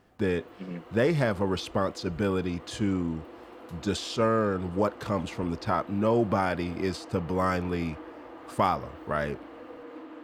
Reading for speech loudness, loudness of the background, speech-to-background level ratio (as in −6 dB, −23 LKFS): −29.0 LKFS, −46.0 LKFS, 17.0 dB